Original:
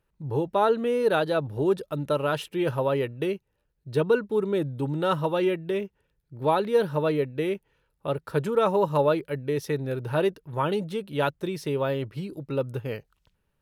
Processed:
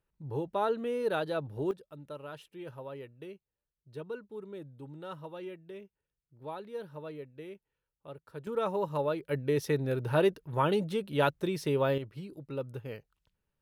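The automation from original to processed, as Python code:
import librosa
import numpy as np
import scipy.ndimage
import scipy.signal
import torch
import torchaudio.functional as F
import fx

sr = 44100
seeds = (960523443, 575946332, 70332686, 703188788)

y = fx.gain(x, sr, db=fx.steps((0.0, -8.0), (1.71, -18.0), (8.47, -9.0), (9.29, -1.5), (11.98, -9.0)))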